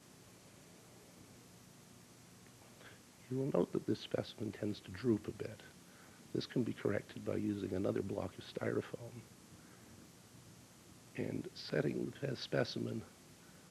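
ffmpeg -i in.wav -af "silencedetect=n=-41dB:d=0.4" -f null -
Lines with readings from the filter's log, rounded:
silence_start: 0.00
silence_end: 3.31 | silence_duration: 3.31
silence_start: 5.60
silence_end: 6.35 | silence_duration: 0.75
silence_start: 9.19
silence_end: 11.17 | silence_duration: 1.98
silence_start: 13.00
silence_end: 13.70 | silence_duration: 0.71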